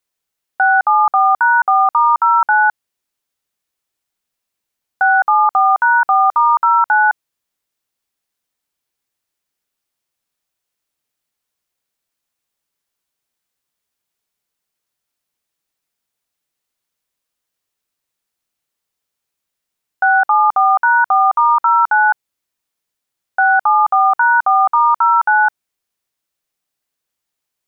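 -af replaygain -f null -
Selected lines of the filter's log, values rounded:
track_gain = -2.9 dB
track_peak = 0.383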